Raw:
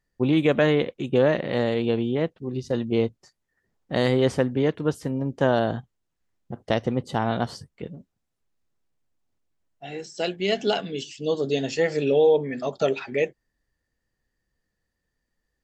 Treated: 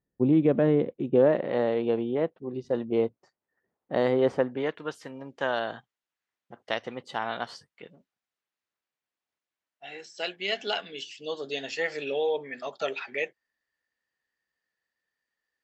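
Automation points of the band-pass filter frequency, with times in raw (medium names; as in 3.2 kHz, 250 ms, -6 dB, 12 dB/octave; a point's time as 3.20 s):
band-pass filter, Q 0.66
0.90 s 260 Hz
1.52 s 670 Hz
4.33 s 670 Hz
4.86 s 2.1 kHz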